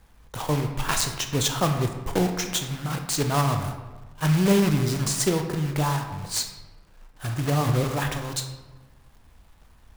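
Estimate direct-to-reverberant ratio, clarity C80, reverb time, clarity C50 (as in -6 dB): 5.0 dB, 9.0 dB, 1.2 s, 7.0 dB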